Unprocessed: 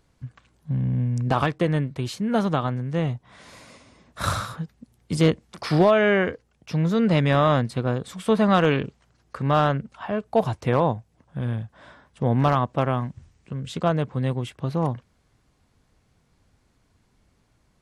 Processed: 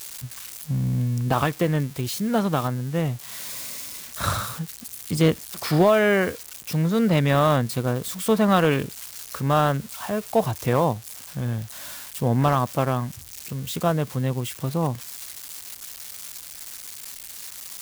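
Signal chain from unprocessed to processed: zero-crossing glitches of -25.5 dBFS

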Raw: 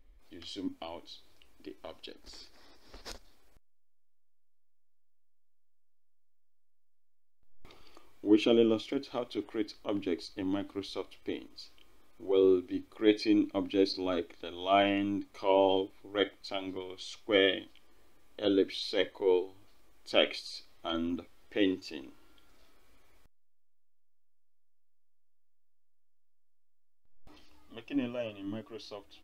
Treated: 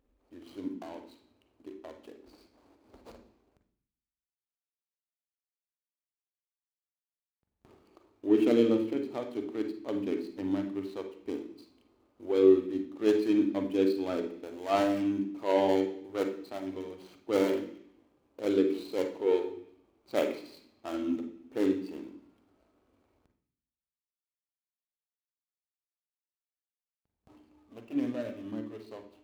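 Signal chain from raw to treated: median filter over 25 samples; high-pass 91 Hz; on a send: bass shelf 190 Hz +7.5 dB + reverberation RT60 0.65 s, pre-delay 41 ms, DRR 5.5 dB

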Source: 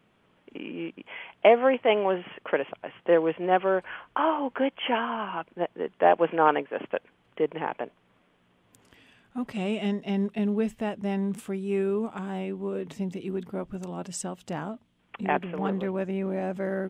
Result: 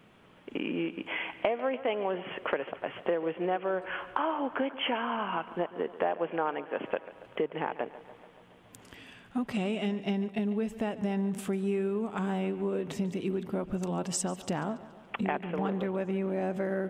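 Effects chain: compression 5:1, threshold -35 dBFS, peak gain reduction 20 dB; on a send: tape echo 143 ms, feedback 69%, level -15.5 dB, low-pass 5.2 kHz; on the sum: trim +6.5 dB

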